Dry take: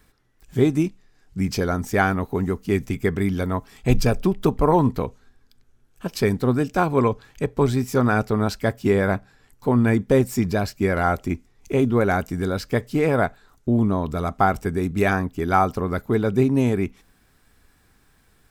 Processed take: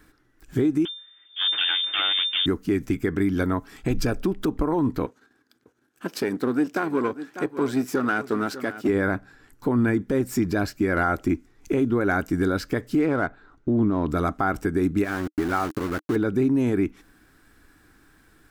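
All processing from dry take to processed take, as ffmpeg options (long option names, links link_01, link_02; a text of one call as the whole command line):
ffmpeg -i in.wav -filter_complex "[0:a]asettb=1/sr,asplit=3[link_01][link_02][link_03];[link_01]atrim=end=0.854[link_04];[link_02]atrim=start=0.85:end=2.46,asetpts=PTS-STARTPTS,afade=type=in:duration=0.004:curve=qsin,afade=type=out:start_time=1.606:duration=0.004:curve=qsin,aeval=exprs='abs(val(0))':channel_layout=same,lowpass=frequency=3100:width_type=q:width=0.5098,lowpass=frequency=3100:width_type=q:width=0.6013,lowpass=frequency=3100:width_type=q:width=0.9,lowpass=frequency=3100:width_type=q:width=2.563,afreqshift=-3600[link_05];[link_03]atrim=start=2.456[link_06];[link_04][link_05]acrossfade=duration=0.004:curve1=hsin:curve2=qsin[link_07];[link_07][link_06]acrossfade=duration=0.004:curve1=qsin:curve2=hsin,asettb=1/sr,asplit=3[link_08][link_09][link_10];[link_08]atrim=end=5.064[link_11];[link_09]atrim=start=5.06:end=8.89,asetpts=PTS-STARTPTS,afade=type=in:duration=0.004:curve=qsin,afade=type=out:start_time=3.826:duration=0.004:curve=qsin,aeval=exprs='if(lt(val(0),0),0.447*val(0),val(0))':channel_layout=same,highpass=200,aecho=1:1:596:0.15,atrim=end_sample=168903[link_12];[link_10]atrim=start=8.886[link_13];[link_11][link_12]acrossfade=duration=0.004:curve1=hsin:curve2=qsin[link_14];[link_14][link_13]acrossfade=duration=0.004:curve1=qsin:curve2=hsin,asettb=1/sr,asplit=3[link_15][link_16][link_17];[link_15]atrim=end=13.024[link_18];[link_16]atrim=start=13.02:end=14.09,asetpts=PTS-STARTPTS,afade=type=in:duration=0.004:curve=qsin,afade=type=out:start_time=1.066:duration=0.004:curve=qsin,bandreject=frequency=1700:width=19,adynamicsmooth=sensitivity=4.5:basefreq=3200[link_19];[link_17]atrim=start=14.086[link_20];[link_18][link_19]acrossfade=duration=0.004:curve1=hsin:curve2=qsin[link_21];[link_21][link_20]acrossfade=duration=0.004:curve1=qsin:curve2=hsin,asettb=1/sr,asplit=3[link_22][link_23][link_24];[link_22]atrim=end=15.044[link_25];[link_23]atrim=start=15.04:end=16.16,asetpts=PTS-STARTPTS,afade=type=in:duration=0.004:curve=qsin,afade=type=out:start_time=1.116:duration=0.004:curve=qsin,acompressor=threshold=-28dB:ratio=2.5:attack=3.2:release=140:knee=1:detection=peak,aeval=exprs='val(0)*gte(abs(val(0)),0.0237)':channel_layout=same[link_26];[link_24]atrim=start=16.156[link_27];[link_25][link_26]acrossfade=duration=0.004:curve1=hsin:curve2=qsin[link_28];[link_28][link_27]acrossfade=duration=0.004:curve1=qsin:curve2=hsin,equalizer=frequency=310:width=3.4:gain=12.5,alimiter=limit=-14.5dB:level=0:latency=1:release=171,equalizer=frequency=1500:width=2.3:gain=7.5" out.wav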